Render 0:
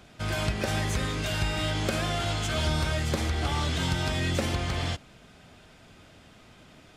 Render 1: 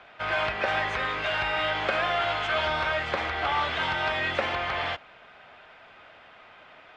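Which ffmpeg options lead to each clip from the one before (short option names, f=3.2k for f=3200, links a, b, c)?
-filter_complex "[0:a]lowpass=6.1k,acrossover=split=560 3000:gain=0.0794 1 0.0631[a][b][c];[a][b][c]amix=inputs=3:normalize=0,volume=8.5dB"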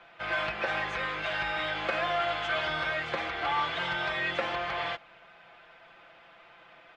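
-af "aecho=1:1:5.9:0.64,volume=-5dB"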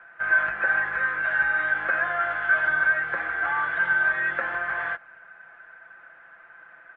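-af "lowpass=f=1.6k:t=q:w=8.9,volume=-4.5dB"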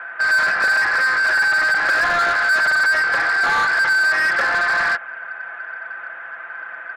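-filter_complex "[0:a]asplit=2[a][b];[b]highpass=f=720:p=1,volume=24dB,asoftclip=type=tanh:threshold=-10dB[c];[a][c]amix=inputs=2:normalize=0,lowpass=f=3.1k:p=1,volume=-6dB"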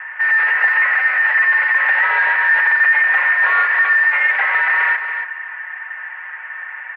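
-af "highpass=f=170:t=q:w=0.5412,highpass=f=170:t=q:w=1.307,lowpass=f=2.7k:t=q:w=0.5176,lowpass=f=2.7k:t=q:w=0.7071,lowpass=f=2.7k:t=q:w=1.932,afreqshift=250,aecho=1:1:282|564|846:0.398|0.0637|0.0102,volume=2dB"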